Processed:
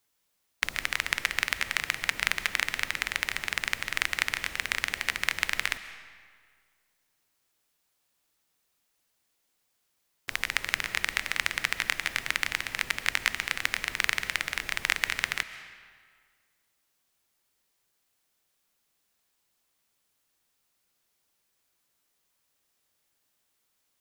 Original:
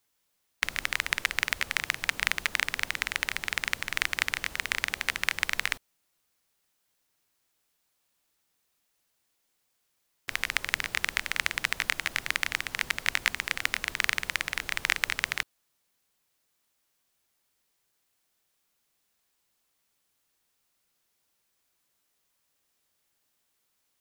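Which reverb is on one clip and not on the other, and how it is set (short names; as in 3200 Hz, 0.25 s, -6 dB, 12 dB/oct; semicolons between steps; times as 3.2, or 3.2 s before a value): digital reverb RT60 1.8 s, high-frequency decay 0.8×, pre-delay 95 ms, DRR 12.5 dB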